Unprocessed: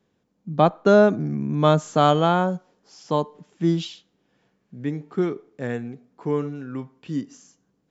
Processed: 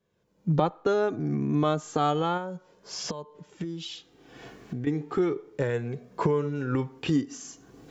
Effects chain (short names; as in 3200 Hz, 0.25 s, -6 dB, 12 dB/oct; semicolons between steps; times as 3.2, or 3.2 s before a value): recorder AGC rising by 35 dB/s; flange 0.33 Hz, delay 1.8 ms, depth 1 ms, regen -32%; 2.37–4.87 compressor 10:1, threshold -27 dBFS, peak gain reduction 12.5 dB; gain -4 dB